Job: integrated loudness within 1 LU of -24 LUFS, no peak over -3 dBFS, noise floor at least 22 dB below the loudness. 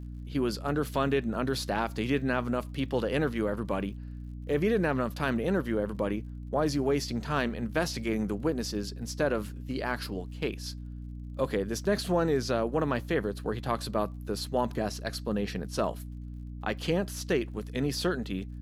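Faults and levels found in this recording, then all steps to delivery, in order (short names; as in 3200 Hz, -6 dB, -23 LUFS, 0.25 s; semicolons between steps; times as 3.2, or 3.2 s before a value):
ticks 51/s; hum 60 Hz; harmonics up to 300 Hz; hum level -38 dBFS; loudness -30.5 LUFS; peak -14.0 dBFS; loudness target -24.0 LUFS
-> de-click; de-hum 60 Hz, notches 5; gain +6.5 dB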